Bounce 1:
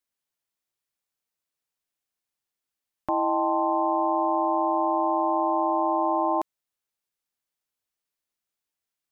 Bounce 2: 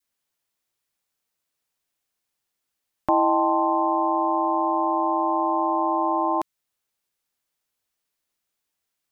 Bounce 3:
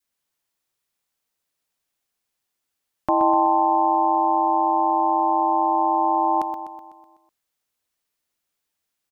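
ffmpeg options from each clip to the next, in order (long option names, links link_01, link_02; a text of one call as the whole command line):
ffmpeg -i in.wav -af "adynamicequalizer=threshold=0.0141:dfrequency=540:dqfactor=0.71:tfrequency=540:tqfactor=0.71:attack=5:release=100:ratio=0.375:range=3.5:mode=cutabove:tftype=bell,volume=6dB" out.wav
ffmpeg -i in.wav -af "aecho=1:1:125|250|375|500|625|750|875:0.376|0.207|0.114|0.0625|0.0344|0.0189|0.0104" out.wav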